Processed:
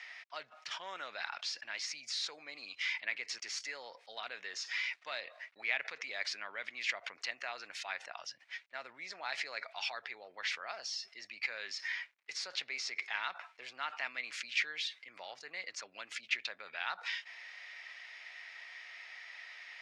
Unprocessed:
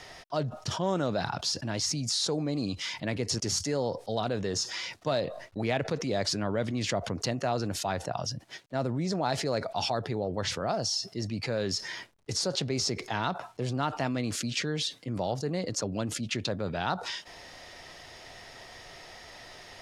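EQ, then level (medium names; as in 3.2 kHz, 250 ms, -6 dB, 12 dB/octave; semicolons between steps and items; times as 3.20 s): ladder band-pass 2.6 kHz, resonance 55%; treble shelf 2.3 kHz -11.5 dB; peaking EQ 2.9 kHz -4.5 dB 0.81 oct; +17.0 dB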